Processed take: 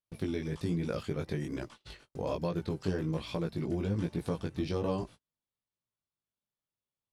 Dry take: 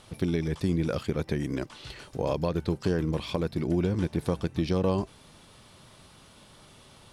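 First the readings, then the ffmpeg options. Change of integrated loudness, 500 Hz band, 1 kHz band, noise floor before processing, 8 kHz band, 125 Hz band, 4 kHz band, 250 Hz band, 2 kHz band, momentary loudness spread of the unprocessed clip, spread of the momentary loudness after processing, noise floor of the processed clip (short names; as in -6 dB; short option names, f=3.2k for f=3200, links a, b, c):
-5.5 dB, -5.5 dB, -5.5 dB, -54 dBFS, -6.5 dB, -5.5 dB, -6.0 dB, -5.5 dB, -5.5 dB, 6 LU, 6 LU, under -85 dBFS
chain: -af "flanger=delay=17:depth=4:speed=1.2,agate=range=-40dB:threshold=-45dB:ratio=16:detection=peak,volume=-2.5dB"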